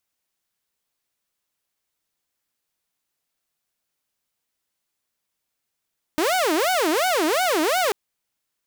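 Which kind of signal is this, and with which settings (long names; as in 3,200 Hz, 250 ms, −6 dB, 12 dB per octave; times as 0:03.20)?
siren wail 304–753 Hz 2.8 per second saw −16 dBFS 1.74 s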